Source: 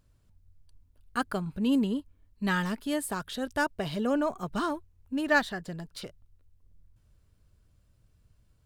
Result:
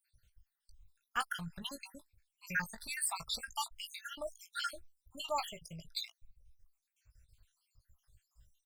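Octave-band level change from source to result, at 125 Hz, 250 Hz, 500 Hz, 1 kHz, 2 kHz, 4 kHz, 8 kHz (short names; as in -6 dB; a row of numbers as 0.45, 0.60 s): -13.5, -23.0, -14.5, -7.5, -8.5, -0.5, +2.0 dB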